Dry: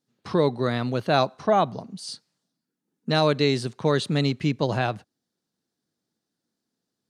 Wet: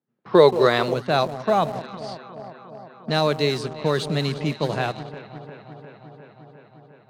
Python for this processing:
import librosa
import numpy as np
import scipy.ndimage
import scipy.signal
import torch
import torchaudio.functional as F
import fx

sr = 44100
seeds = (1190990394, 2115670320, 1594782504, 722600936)

p1 = scipy.signal.sosfilt(scipy.signal.butter(4, 120.0, 'highpass', fs=sr, output='sos'), x)
p2 = fx.peak_eq(p1, sr, hz=270.0, db=-6.5, octaves=0.21)
p3 = p2 + fx.echo_alternate(p2, sr, ms=177, hz=950.0, feedback_pct=87, wet_db=-12.0, dry=0)
p4 = fx.spec_box(p3, sr, start_s=0.33, length_s=0.61, low_hz=330.0, high_hz=8800.0, gain_db=9)
p5 = np.where(np.abs(p4) >= 10.0 ** (-27.0 / 20.0), p4, 0.0)
p6 = p4 + (p5 * 10.0 ** (-8.5 / 20.0))
p7 = fx.env_lowpass(p6, sr, base_hz=1700.0, full_db=-16.0)
y = p7 * 10.0 ** (-2.5 / 20.0)